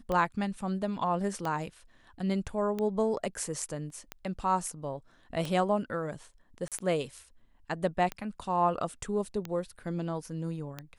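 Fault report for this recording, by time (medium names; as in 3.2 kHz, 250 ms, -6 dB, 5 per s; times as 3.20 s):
tick 45 rpm -20 dBFS
3.90 s: dropout 2.7 ms
6.68–6.72 s: dropout 37 ms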